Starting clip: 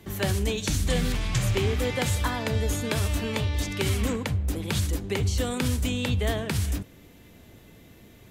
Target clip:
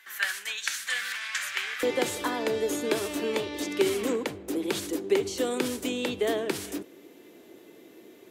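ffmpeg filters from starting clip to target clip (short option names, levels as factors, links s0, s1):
-af "asetnsamples=n=441:p=0,asendcmd='1.83 highpass f 350',highpass=f=1600:t=q:w=3.6,volume=0.794"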